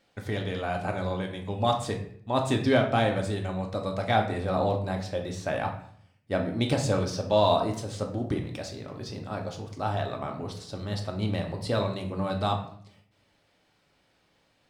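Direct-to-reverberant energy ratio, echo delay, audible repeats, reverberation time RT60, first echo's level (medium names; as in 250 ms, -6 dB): 2.0 dB, no echo, no echo, 0.60 s, no echo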